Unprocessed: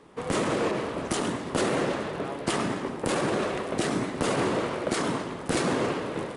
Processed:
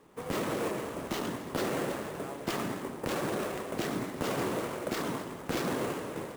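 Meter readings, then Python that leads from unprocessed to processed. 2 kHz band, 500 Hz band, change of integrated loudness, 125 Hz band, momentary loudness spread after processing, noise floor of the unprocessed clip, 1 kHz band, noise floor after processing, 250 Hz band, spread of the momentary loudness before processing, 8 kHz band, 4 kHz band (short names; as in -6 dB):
-6.0 dB, -6.0 dB, -6.0 dB, -6.0 dB, 5 LU, -38 dBFS, -6.0 dB, -44 dBFS, -6.0 dB, 5 LU, -7.0 dB, -6.5 dB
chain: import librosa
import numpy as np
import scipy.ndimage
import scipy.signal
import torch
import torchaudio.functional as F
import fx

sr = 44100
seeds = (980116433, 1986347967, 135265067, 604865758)

y = fx.sample_hold(x, sr, seeds[0], rate_hz=9700.0, jitter_pct=20)
y = y * librosa.db_to_amplitude(-6.0)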